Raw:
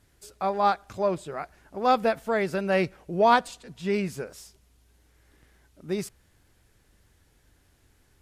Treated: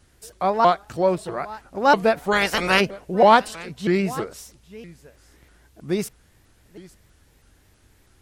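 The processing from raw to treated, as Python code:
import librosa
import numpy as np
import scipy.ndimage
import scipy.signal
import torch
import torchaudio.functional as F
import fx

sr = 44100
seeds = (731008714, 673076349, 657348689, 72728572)

y = fx.spec_clip(x, sr, under_db=23, at=(2.31, 2.79), fade=0.02)
y = y + 10.0 ** (-19.5 / 20.0) * np.pad(y, (int(855 * sr / 1000.0), 0))[:len(y)]
y = fx.vibrato_shape(y, sr, shape='saw_up', rate_hz=3.1, depth_cents=250.0)
y = y * librosa.db_to_amplitude(5.5)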